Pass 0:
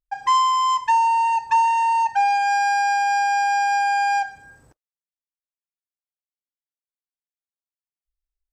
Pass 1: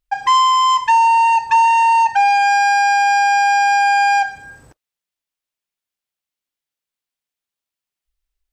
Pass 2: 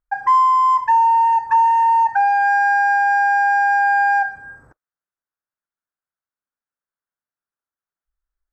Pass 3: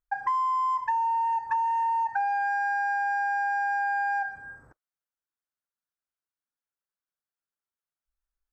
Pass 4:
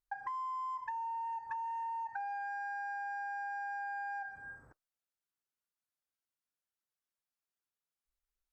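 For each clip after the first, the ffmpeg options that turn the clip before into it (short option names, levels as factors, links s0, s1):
-filter_complex "[0:a]equalizer=f=2900:w=0.98:g=4,asplit=2[s0][s1];[s1]alimiter=limit=0.133:level=0:latency=1:release=19,volume=1.41[s2];[s0][s2]amix=inputs=2:normalize=0"
-af "highshelf=f=2100:t=q:w=3:g=-12,volume=0.596"
-af "acompressor=threshold=0.112:ratio=6,volume=0.531"
-af "acompressor=threshold=0.0178:ratio=3,volume=0.562" -ar 48000 -c:a libopus -b:a 128k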